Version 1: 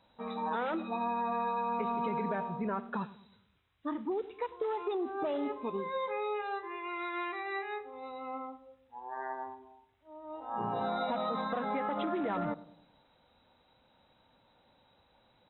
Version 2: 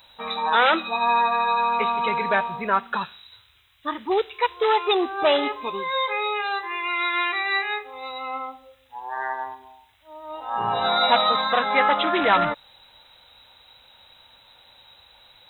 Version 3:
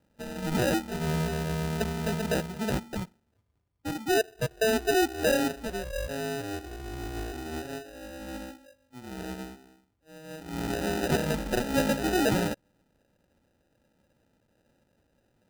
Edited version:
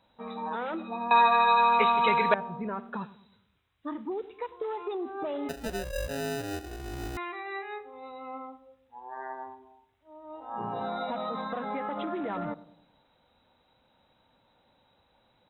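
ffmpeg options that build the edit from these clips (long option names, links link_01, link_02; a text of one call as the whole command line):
ffmpeg -i take0.wav -i take1.wav -i take2.wav -filter_complex "[0:a]asplit=3[link_01][link_02][link_03];[link_01]atrim=end=1.112[link_04];[1:a]atrim=start=1.108:end=2.342[link_05];[link_02]atrim=start=2.338:end=5.492[link_06];[2:a]atrim=start=5.488:end=7.172[link_07];[link_03]atrim=start=7.168[link_08];[link_04][link_05]acrossfade=duration=0.004:curve1=hsin:curve2=hsin[link_09];[link_09][link_06]acrossfade=duration=0.004:curve1=hsin:curve2=hsin[link_10];[link_10][link_07]acrossfade=duration=0.004:curve1=hsin:curve2=hsin[link_11];[link_11][link_08]acrossfade=duration=0.004:curve1=hsin:curve2=hsin" out.wav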